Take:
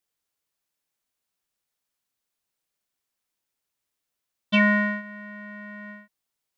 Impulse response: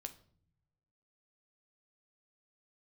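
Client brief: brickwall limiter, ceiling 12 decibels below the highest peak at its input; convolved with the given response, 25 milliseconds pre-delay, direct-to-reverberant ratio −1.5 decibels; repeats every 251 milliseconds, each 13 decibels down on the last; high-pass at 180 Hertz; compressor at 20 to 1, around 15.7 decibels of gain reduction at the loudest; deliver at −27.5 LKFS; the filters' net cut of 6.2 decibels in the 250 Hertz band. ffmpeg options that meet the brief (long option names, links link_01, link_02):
-filter_complex "[0:a]highpass=180,equalizer=frequency=250:width_type=o:gain=-5.5,acompressor=threshold=-31dB:ratio=20,alimiter=level_in=5.5dB:limit=-24dB:level=0:latency=1,volume=-5.5dB,aecho=1:1:251|502|753:0.224|0.0493|0.0108,asplit=2[link_01][link_02];[1:a]atrim=start_sample=2205,adelay=25[link_03];[link_02][link_03]afir=irnorm=-1:irlink=0,volume=5.5dB[link_04];[link_01][link_04]amix=inputs=2:normalize=0,volume=10dB"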